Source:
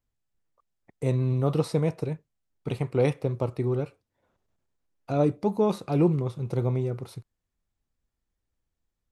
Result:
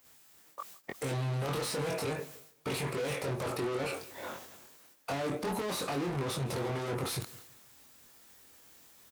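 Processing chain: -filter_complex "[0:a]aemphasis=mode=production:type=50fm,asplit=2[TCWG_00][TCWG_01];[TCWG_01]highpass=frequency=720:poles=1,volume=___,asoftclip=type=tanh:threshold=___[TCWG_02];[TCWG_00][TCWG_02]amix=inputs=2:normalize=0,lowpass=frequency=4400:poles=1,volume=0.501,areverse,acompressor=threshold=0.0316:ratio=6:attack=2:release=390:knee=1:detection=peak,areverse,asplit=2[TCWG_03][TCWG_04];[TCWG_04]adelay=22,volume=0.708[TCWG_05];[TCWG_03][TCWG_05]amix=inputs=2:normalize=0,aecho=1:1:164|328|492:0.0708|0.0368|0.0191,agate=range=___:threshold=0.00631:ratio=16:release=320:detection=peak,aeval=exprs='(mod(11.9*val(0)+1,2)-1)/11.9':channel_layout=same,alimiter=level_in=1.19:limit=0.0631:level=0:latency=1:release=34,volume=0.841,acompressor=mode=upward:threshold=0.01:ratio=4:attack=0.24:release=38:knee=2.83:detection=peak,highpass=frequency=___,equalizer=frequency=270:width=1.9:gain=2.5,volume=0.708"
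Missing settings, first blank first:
126, 0.335, 0.00126, 48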